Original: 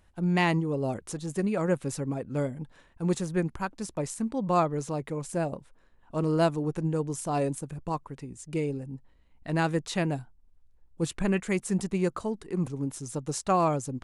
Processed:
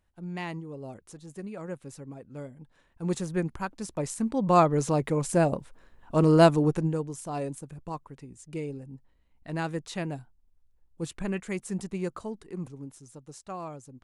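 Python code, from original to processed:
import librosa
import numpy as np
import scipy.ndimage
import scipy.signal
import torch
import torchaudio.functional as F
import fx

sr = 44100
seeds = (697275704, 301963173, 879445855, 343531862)

y = fx.gain(x, sr, db=fx.line((2.58, -11.0), (3.17, -1.0), (3.82, -1.0), (4.89, 6.5), (6.66, 6.5), (7.12, -5.0), (12.41, -5.0), (13.18, -14.0)))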